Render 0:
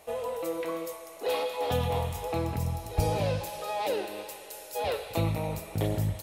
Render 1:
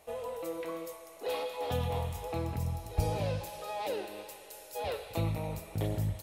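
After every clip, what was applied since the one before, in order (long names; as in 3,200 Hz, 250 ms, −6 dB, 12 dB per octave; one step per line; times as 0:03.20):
low-shelf EQ 98 Hz +5 dB
level −5.5 dB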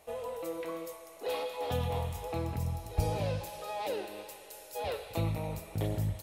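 no processing that can be heard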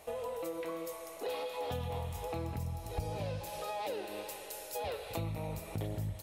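downward compressor 3 to 1, threshold −42 dBFS, peak gain reduction 14 dB
level +4.5 dB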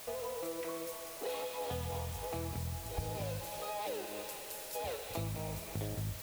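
bit-depth reduction 8 bits, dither triangular
level −1.5 dB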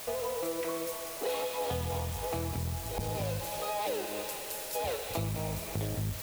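saturating transformer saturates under 210 Hz
level +6 dB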